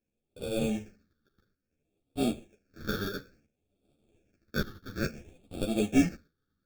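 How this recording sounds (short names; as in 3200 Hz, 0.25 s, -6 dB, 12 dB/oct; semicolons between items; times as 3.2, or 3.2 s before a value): aliases and images of a low sample rate 1000 Hz, jitter 0%; phasing stages 6, 0.58 Hz, lowest notch 660–1700 Hz; tremolo saw up 0.65 Hz, depth 70%; a shimmering, thickened sound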